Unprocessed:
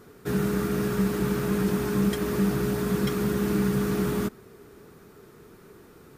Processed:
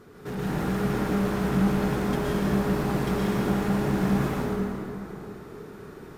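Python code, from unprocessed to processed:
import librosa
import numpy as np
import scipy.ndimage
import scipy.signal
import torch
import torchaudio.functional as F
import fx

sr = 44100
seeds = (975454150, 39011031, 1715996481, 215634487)

y = fx.high_shelf(x, sr, hz=6800.0, db=-9.0)
y = 10.0 ** (-30.0 / 20.0) * np.tanh(y / 10.0 ** (-30.0 / 20.0))
y = fx.rev_plate(y, sr, seeds[0], rt60_s=3.1, hf_ratio=0.6, predelay_ms=100, drr_db=-6.5)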